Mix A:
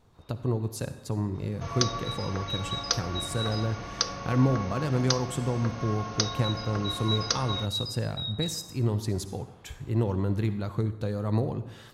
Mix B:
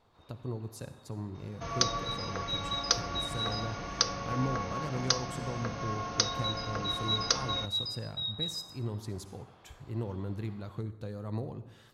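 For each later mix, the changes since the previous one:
speech -9.5 dB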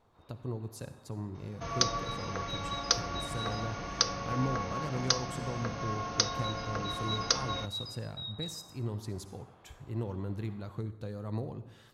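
first sound: add high shelf 3600 Hz -12 dB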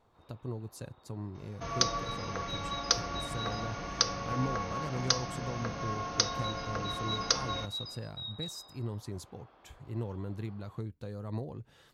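reverb: off

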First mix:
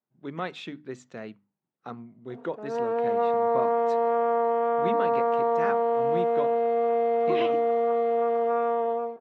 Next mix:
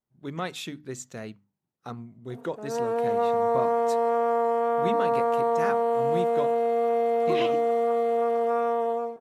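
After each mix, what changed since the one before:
master: remove BPF 170–3100 Hz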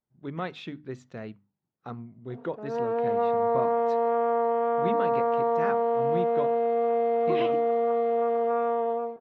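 master: add air absorption 270 m

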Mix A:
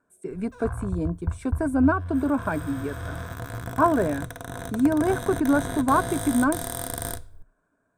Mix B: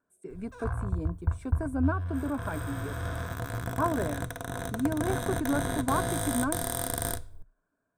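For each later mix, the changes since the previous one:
speech -8.5 dB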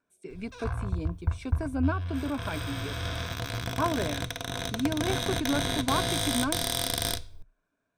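master: add band shelf 3600 Hz +13 dB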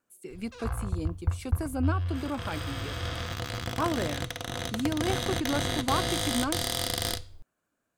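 speech: remove air absorption 81 m; master: remove ripple EQ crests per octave 1.6, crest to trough 7 dB

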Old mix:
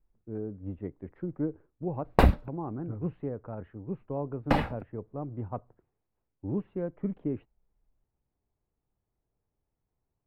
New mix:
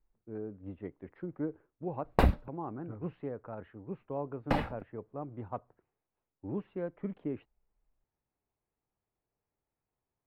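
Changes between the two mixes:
speech: add tilt +2.5 dB/oct; background -4.5 dB

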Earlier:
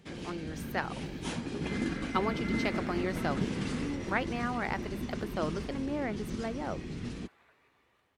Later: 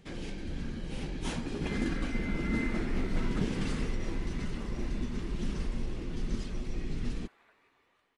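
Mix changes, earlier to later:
speech: muted; master: remove HPF 77 Hz 12 dB/oct

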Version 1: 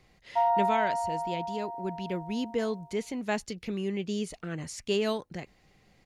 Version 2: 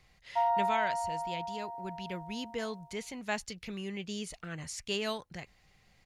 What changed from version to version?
master: add bell 320 Hz -10 dB 2 oct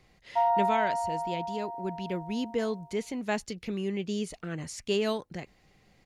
master: add bell 320 Hz +10 dB 2 oct

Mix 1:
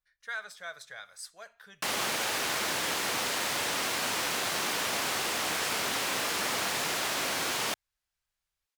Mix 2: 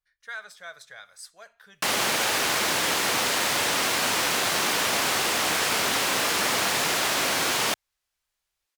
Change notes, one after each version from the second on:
background +6.5 dB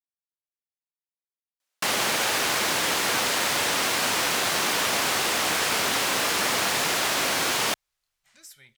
speech: entry +2.80 s

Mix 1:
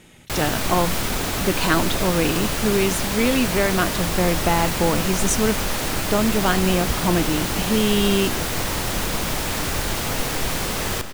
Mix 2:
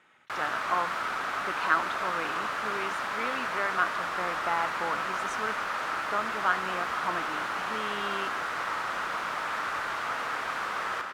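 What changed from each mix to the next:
background: send +8.0 dB; master: add band-pass 1300 Hz, Q 2.6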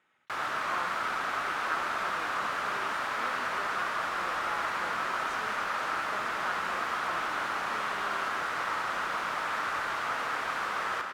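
speech -10.0 dB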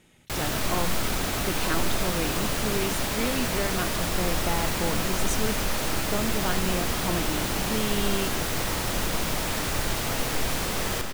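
background -6.5 dB; master: remove band-pass 1300 Hz, Q 2.6

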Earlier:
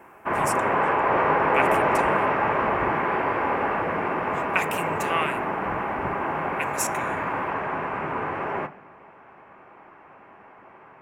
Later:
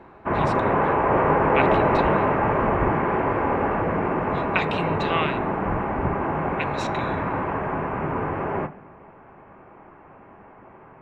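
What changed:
speech: add synth low-pass 3900 Hz, resonance Q 13; master: add tilt -3 dB/oct

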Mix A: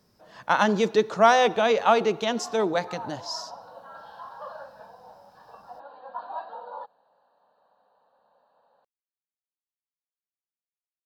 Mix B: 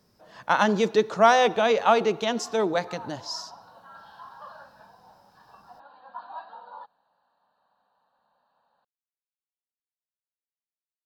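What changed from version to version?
background: add bell 490 Hz -12 dB 1.2 oct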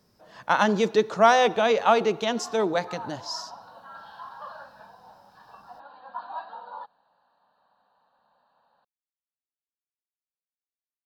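background +3.5 dB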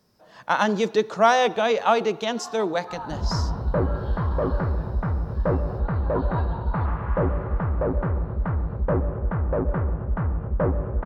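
second sound: unmuted; reverb: on, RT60 0.85 s

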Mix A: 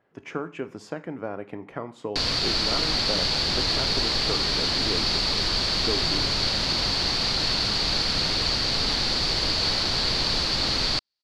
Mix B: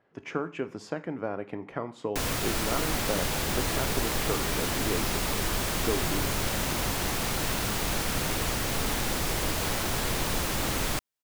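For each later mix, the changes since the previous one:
background: remove synth low-pass 4500 Hz, resonance Q 9.7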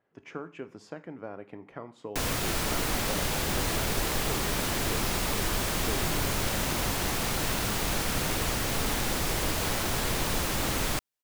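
speech -7.5 dB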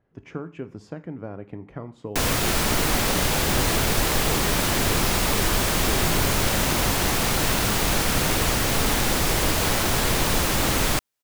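speech: remove HPF 550 Hz 6 dB/oct; background +7.0 dB

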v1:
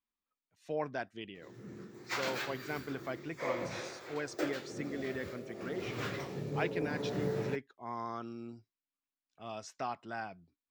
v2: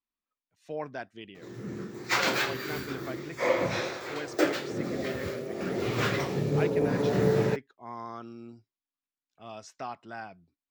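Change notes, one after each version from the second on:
background +10.5 dB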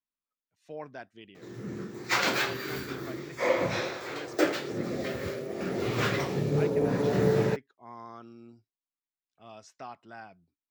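speech -5.0 dB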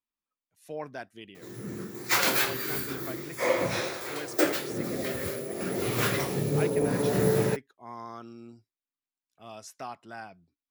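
speech +3.5 dB; master: remove running mean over 4 samples

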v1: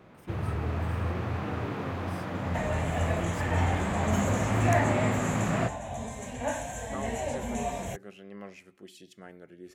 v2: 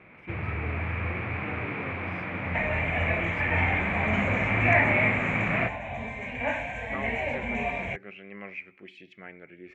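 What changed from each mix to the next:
first sound: send off; master: add synth low-pass 2300 Hz, resonance Q 8.4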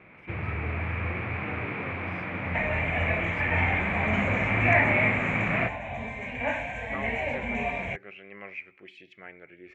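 speech: add bell 210 Hz -7 dB 1 oct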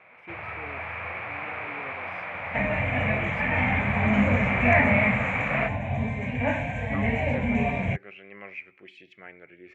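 first sound: add resonant low shelf 450 Hz -11.5 dB, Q 1.5; second sound: add bell 110 Hz +14.5 dB 2.9 oct; master: add HPF 72 Hz

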